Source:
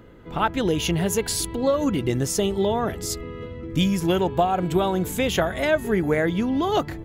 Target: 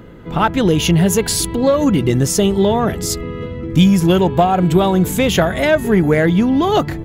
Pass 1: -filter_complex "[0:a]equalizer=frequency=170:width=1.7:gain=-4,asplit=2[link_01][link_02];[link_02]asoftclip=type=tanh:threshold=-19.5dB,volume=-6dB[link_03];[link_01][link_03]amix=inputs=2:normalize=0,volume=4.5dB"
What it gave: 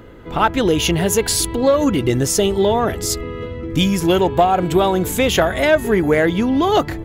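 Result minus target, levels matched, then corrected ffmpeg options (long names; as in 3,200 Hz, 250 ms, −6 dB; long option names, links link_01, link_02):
125 Hz band −4.5 dB
-filter_complex "[0:a]equalizer=frequency=170:width=1.7:gain=5,asplit=2[link_01][link_02];[link_02]asoftclip=type=tanh:threshold=-19.5dB,volume=-6dB[link_03];[link_01][link_03]amix=inputs=2:normalize=0,volume=4.5dB"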